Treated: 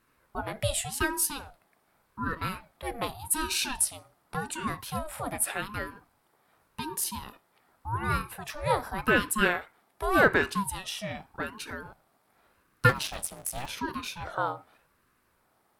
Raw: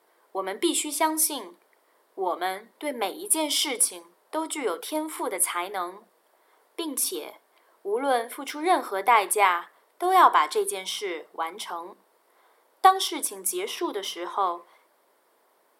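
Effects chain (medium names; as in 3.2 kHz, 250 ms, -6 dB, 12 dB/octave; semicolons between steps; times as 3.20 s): 12.89–13.69 s: cycle switcher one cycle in 3, muted; ring modulator with a swept carrier 440 Hz, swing 50%, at 0.86 Hz; trim -1.5 dB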